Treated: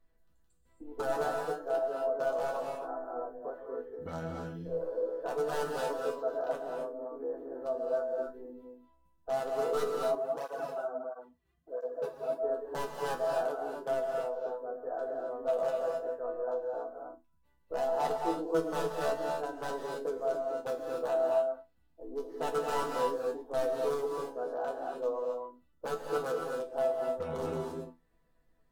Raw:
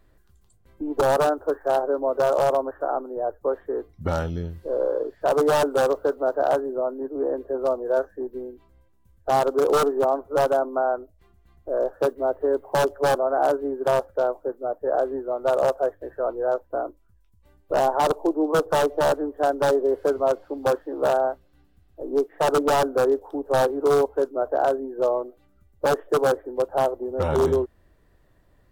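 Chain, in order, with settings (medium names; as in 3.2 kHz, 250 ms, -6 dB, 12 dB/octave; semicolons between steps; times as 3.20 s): chord resonator E3 sus4, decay 0.21 s; gated-style reverb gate 300 ms rising, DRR 1 dB; 10.15–12.43 s: cancelling through-zero flanger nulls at 1.5 Hz, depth 4.6 ms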